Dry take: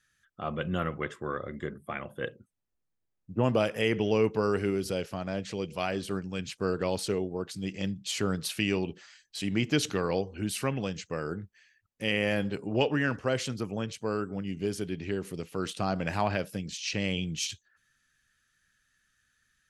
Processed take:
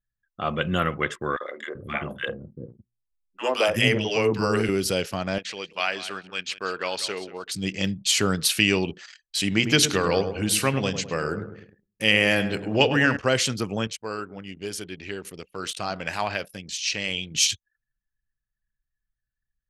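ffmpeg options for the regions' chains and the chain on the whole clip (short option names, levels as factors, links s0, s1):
-filter_complex "[0:a]asettb=1/sr,asplit=3[s0][s1][s2];[s0]atrim=end=1.364[s3];[s1]atrim=start=1.36:end=4.69,asetpts=PTS-STARTPTS,afade=t=in:d=0.004:c=qsin,afade=t=out:st=3.326:d=0.004:c=qsin,bandreject=f=60:t=h:w=6,bandreject=f=120:t=h:w=6,bandreject=f=180:t=h:w=6,bandreject=f=240:t=h:w=6,bandreject=f=300:t=h:w=6,bandreject=f=360:t=h:w=6,bandreject=f=420:t=h:w=6,bandreject=f=480:t=h:w=6,acrossover=split=350|1200[s4][s5][s6];[s5]adelay=50[s7];[s4]adelay=390[s8];[s8][s7][s6]amix=inputs=3:normalize=0,atrim=end_sample=146853[s9];[s2]atrim=start=4.686[s10];[s3][s9]acrossfade=d=0.004:c1=hsin:c2=qsin[s11];[s11][s10]acrossfade=d=0.004:c1=qsin:c2=hsin,asettb=1/sr,asplit=3[s12][s13][s14];[s12]atrim=end=5.384[s15];[s13]atrim=start=5.38:end=7.52,asetpts=PTS-STARTPTS,afade=t=in:d=0.004:c=qsin,afade=t=out:st=2.136:d=0.004:c=qsin,bandpass=f=2000:t=q:w=0.58,aecho=1:1:187|374:0.178|0.0409,atrim=end_sample=94374[s16];[s14]atrim=start=7.516[s17];[s15][s16]acrossfade=d=0.004:c1=hsin:c2=qsin[s18];[s18][s17]acrossfade=d=0.004:c1=qsin:c2=hsin,asettb=1/sr,asplit=3[s19][s20][s21];[s19]atrim=end=9.534[s22];[s20]atrim=start=9.53:end=13.17,asetpts=PTS-STARTPTS,afade=t=in:d=0.004:c=qsin,afade=t=out:st=3.636:d=0.004:c=qsin,bandreject=f=60:t=h:w=6,bandreject=f=120:t=h:w=6,bandreject=f=180:t=h:w=6,bandreject=f=240:t=h:w=6,bandreject=f=300:t=h:w=6,bandreject=f=360:t=h:w=6,bandreject=f=420:t=h:w=6,asplit=2[s23][s24];[s24]adelay=103,lowpass=f=1600:p=1,volume=0.355,asplit=2[s25][s26];[s26]adelay=103,lowpass=f=1600:p=1,volume=0.5,asplit=2[s27][s28];[s28]adelay=103,lowpass=f=1600:p=1,volume=0.5,asplit=2[s29][s30];[s30]adelay=103,lowpass=f=1600:p=1,volume=0.5,asplit=2[s31][s32];[s32]adelay=103,lowpass=f=1600:p=1,volume=0.5,asplit=2[s33][s34];[s34]adelay=103,lowpass=f=1600:p=1,volume=0.5[s35];[s23][s25][s27][s29][s31][s33][s35]amix=inputs=7:normalize=0,atrim=end_sample=160524[s36];[s21]atrim=start=13.166[s37];[s22][s36]acrossfade=d=0.004:c1=hsin:c2=qsin[s38];[s38][s37]acrossfade=d=0.004:c1=qsin:c2=hsin,asettb=1/sr,asplit=3[s39][s40][s41];[s39]atrim=end=13.874[s42];[s40]atrim=start=13.87:end=17.35,asetpts=PTS-STARTPTS,afade=t=in:d=0.004:c=qsin,afade=t=out:st=3.476:d=0.004:c=qsin,equalizer=f=150:t=o:w=2.7:g=-7,flanger=delay=0.7:depth=4.5:regen=-89:speed=1.1:shape=triangular[s43];[s41]atrim=start=17.346[s44];[s42][s43]acrossfade=d=0.004:c1=hsin:c2=qsin[s45];[s45][s44]acrossfade=d=0.004:c1=qsin:c2=hsin,anlmdn=0.00158,tiltshelf=f=1400:g=-4,volume=2.82"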